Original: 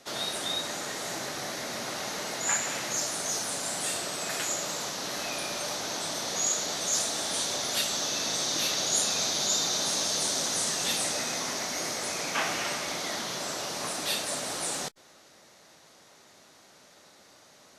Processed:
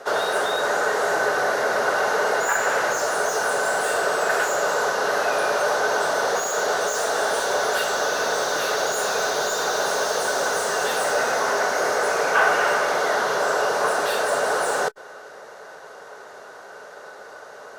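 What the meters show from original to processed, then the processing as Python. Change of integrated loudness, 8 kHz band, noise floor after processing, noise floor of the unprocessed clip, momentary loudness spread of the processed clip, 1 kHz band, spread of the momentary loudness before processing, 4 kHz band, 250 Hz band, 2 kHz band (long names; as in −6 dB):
+7.0 dB, −1.0 dB, −42 dBFS, −57 dBFS, 20 LU, +14.5 dB, 8 LU, −0.5 dB, +3.0 dB, +14.0 dB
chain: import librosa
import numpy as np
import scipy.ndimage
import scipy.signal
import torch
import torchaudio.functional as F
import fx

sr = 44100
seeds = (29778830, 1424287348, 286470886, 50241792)

y = 10.0 ** (-30.0 / 20.0) * np.tanh(x / 10.0 ** (-30.0 / 20.0))
y = fx.band_shelf(y, sr, hz=870.0, db=14.5, octaves=2.3)
y = fx.small_body(y, sr, hz=(420.0, 1500.0, 2800.0), ring_ms=45, db=10)
y = y * librosa.db_to_amplitude(3.0)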